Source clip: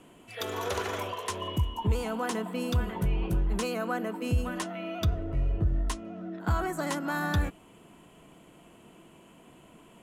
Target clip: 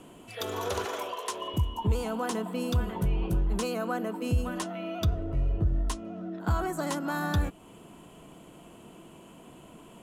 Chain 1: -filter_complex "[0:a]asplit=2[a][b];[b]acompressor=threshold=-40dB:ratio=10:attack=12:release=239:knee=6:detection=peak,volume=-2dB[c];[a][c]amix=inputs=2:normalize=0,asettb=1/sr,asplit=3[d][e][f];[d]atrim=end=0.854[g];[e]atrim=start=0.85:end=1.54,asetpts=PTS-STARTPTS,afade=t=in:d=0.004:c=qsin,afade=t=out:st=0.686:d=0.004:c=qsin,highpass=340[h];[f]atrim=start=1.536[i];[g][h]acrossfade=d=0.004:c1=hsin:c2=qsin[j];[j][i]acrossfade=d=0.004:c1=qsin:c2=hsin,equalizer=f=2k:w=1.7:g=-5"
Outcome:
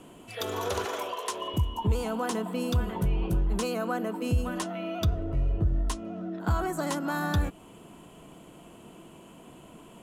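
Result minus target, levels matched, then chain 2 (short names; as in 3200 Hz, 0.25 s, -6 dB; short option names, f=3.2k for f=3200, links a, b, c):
compressor: peak gain reduction -8.5 dB
-filter_complex "[0:a]asplit=2[a][b];[b]acompressor=threshold=-49.5dB:ratio=10:attack=12:release=239:knee=6:detection=peak,volume=-2dB[c];[a][c]amix=inputs=2:normalize=0,asettb=1/sr,asplit=3[d][e][f];[d]atrim=end=0.854[g];[e]atrim=start=0.85:end=1.54,asetpts=PTS-STARTPTS,afade=t=in:d=0.004:c=qsin,afade=t=out:st=0.686:d=0.004:c=qsin,highpass=340[h];[f]atrim=start=1.536[i];[g][h]acrossfade=d=0.004:c1=hsin:c2=qsin[j];[j][i]acrossfade=d=0.004:c1=qsin:c2=hsin,equalizer=f=2k:w=1.7:g=-5"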